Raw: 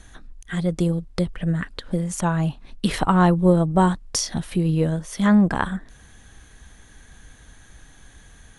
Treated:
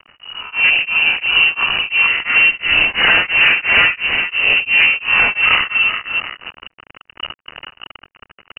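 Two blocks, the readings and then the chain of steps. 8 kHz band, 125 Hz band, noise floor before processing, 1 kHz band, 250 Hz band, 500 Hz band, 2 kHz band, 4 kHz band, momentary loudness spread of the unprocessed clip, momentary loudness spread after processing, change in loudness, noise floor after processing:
under -40 dB, -17.0 dB, -49 dBFS, +2.0 dB, -17.0 dB, -6.0 dB, +22.5 dB, +20.0 dB, 10 LU, 18 LU, +10.0 dB, -76 dBFS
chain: spectral swells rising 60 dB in 0.69 s; compressor 2:1, threshold -19 dBFS, peak gain reduction 5.5 dB; tapped delay 75/160/433/732 ms -8/-17.5/-7.5/-15 dB; wavefolder -17.5 dBFS; bit-crush 6-bit; AGC gain up to 15 dB; inverted band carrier 2900 Hz; beating tremolo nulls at 2.9 Hz; gain -2 dB

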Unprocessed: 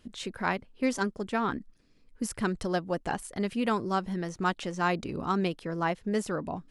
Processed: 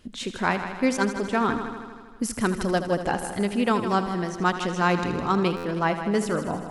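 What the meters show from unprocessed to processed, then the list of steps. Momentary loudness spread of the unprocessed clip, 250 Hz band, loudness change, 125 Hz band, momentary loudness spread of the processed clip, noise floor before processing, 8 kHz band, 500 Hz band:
5 LU, +5.5 dB, +6.0 dB, +6.0 dB, 7 LU, -61 dBFS, +6.0 dB, +6.0 dB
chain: on a send: multi-head echo 79 ms, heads first and second, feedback 60%, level -12.5 dB; on the sum: stuck buffer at 5.56, samples 512, times 6; gain +5 dB

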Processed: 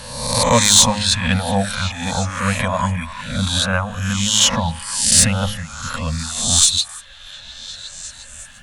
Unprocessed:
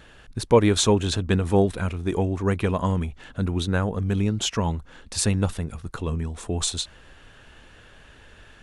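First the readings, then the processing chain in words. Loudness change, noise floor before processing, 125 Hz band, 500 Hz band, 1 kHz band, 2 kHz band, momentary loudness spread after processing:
+8.0 dB, -51 dBFS, +2.5 dB, -1.0 dB, +8.5 dB, +11.0 dB, 20 LU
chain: spectral swells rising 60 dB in 1.00 s; reverb removal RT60 1.4 s; Chebyshev band-stop 250–530 Hz, order 3; high shelf 3000 Hz +8 dB; sine folder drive 4 dB, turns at -0.5 dBFS; de-hum 104.3 Hz, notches 13; on a send: delay with a stepping band-pass 0.354 s, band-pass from 1400 Hz, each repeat 0.7 oct, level -9 dB; on the sum: gain -2 dB

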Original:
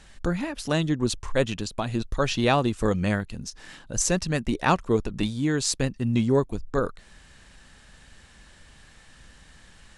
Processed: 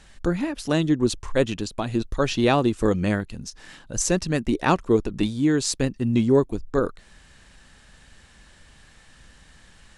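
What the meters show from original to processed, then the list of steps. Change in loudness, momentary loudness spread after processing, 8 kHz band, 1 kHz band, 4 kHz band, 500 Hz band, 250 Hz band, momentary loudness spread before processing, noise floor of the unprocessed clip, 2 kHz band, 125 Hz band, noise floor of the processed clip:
+2.5 dB, 8 LU, 0.0 dB, +0.5 dB, 0.0 dB, +3.0 dB, +4.0 dB, 8 LU, -53 dBFS, 0.0 dB, +0.5 dB, -53 dBFS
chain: dynamic EQ 330 Hz, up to +6 dB, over -37 dBFS, Q 1.5

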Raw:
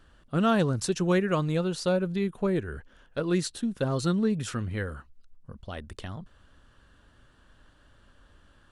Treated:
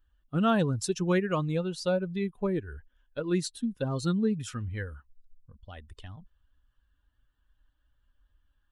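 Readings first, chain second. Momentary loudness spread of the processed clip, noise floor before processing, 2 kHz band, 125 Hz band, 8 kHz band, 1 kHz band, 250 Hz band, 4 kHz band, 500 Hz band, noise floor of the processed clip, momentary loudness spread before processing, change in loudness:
21 LU, -60 dBFS, -3.0 dB, -2.0 dB, -2.5 dB, -2.0 dB, -2.0 dB, -2.5 dB, -2.5 dB, -73 dBFS, 16 LU, -2.0 dB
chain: per-bin expansion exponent 1.5

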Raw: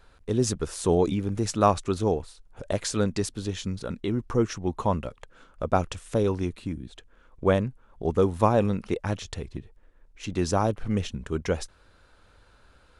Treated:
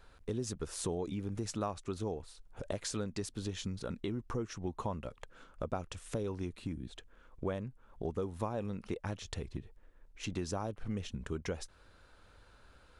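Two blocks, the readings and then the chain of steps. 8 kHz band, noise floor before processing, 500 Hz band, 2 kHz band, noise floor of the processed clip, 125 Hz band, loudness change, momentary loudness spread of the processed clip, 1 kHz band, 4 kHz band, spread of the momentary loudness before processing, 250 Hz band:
-9.0 dB, -59 dBFS, -13.5 dB, -10.5 dB, -62 dBFS, -11.5 dB, -12.5 dB, 8 LU, -15.0 dB, -8.5 dB, 13 LU, -11.5 dB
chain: compressor 4:1, threshold -32 dBFS, peak gain reduction 15 dB; gain -3 dB

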